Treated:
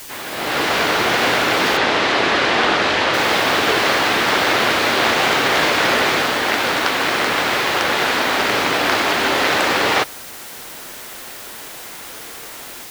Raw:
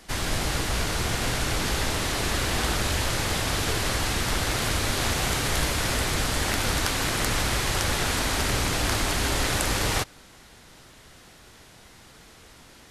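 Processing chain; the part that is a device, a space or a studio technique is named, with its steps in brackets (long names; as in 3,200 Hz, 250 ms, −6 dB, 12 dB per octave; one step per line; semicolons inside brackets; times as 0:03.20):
dictaphone (band-pass filter 330–3,400 Hz; automatic gain control gain up to 15 dB; tape wow and flutter; white noise bed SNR 17 dB)
0:01.77–0:03.14: low-pass filter 5,900 Hz 12 dB per octave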